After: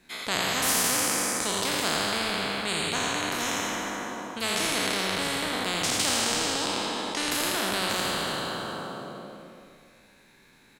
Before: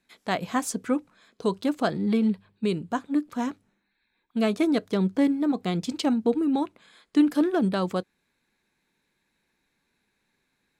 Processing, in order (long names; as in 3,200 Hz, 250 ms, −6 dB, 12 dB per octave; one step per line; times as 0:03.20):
peak hold with a decay on every bin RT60 2.37 s
on a send: single-tap delay 84 ms −5.5 dB
on the sum: every bin compressed towards the loudest bin 4 to 1